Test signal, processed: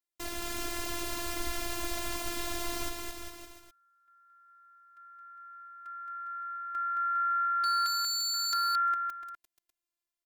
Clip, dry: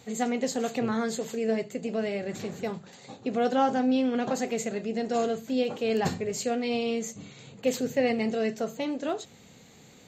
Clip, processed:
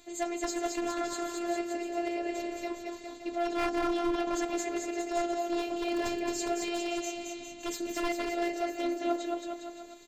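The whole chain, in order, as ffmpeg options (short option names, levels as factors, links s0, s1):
-af "aecho=1:1:220|407|566|701.1|815.9:0.631|0.398|0.251|0.158|0.1,aeval=exprs='0.119*(abs(mod(val(0)/0.119+3,4)-2)-1)':c=same,afftfilt=real='hypot(re,im)*cos(PI*b)':imag='0':win_size=512:overlap=0.75"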